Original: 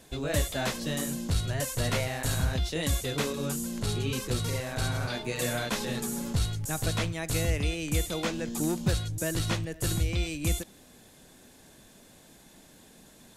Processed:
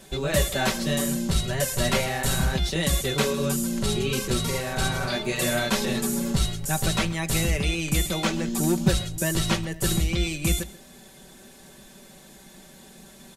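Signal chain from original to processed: comb 5.2 ms, depth 68%; echo from a far wall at 23 m, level -18 dB; trim +4.5 dB

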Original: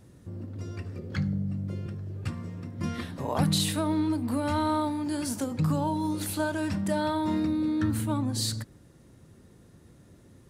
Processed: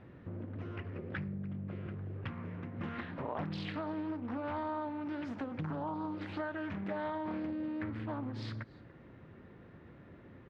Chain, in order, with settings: low-pass 2.4 kHz 24 dB/octave; tilt EQ +2 dB/octave; compression 3:1, threshold -44 dBFS, peak gain reduction 14.5 dB; delay 290 ms -22.5 dB; loudspeaker Doppler distortion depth 0.45 ms; trim +4.5 dB

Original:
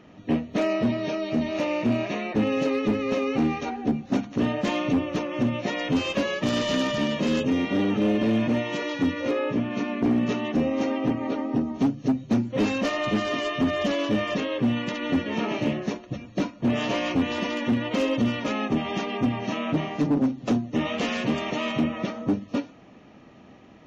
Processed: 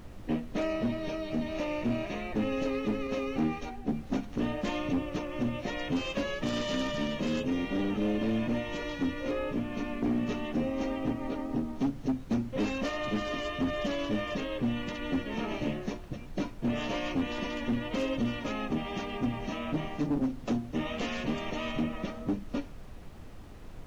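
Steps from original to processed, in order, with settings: added noise brown -36 dBFS; 3.07–3.89 s: three bands expanded up and down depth 70%; trim -7 dB

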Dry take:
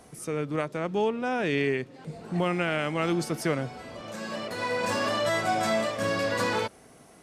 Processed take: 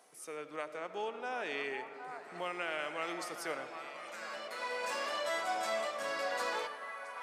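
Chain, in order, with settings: high-pass 550 Hz 12 dB/octave; on a send: repeats whose band climbs or falls 767 ms, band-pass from 1 kHz, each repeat 0.7 oct, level -5 dB; on the sum: algorithmic reverb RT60 3 s, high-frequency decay 0.3×, pre-delay 40 ms, DRR 10.5 dB; trim -8 dB

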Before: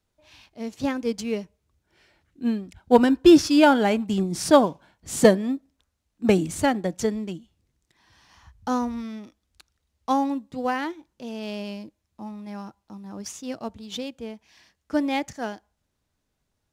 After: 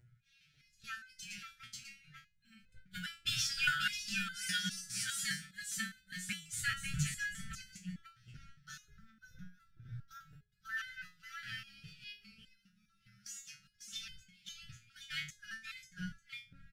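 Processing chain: chunks repeated in reverse 418 ms, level -6 dB; wind noise 240 Hz -37 dBFS; brick-wall FIR band-stop 190–1300 Hz; bass shelf 120 Hz -9 dB; upward compressor, threshold -43 dBFS; gate -40 dBFS, range -12 dB; on a send: delay 542 ms -3.5 dB; on the sum: time-frequency box 8.85–10.77 s, 1.8–12 kHz -8 dB; resonator arpeggio 4.9 Hz 120–510 Hz; trim +5 dB

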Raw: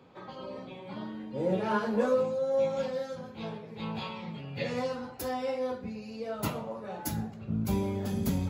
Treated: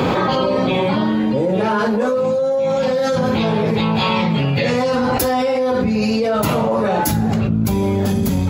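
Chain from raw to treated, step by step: level flattener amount 100%; trim +5.5 dB

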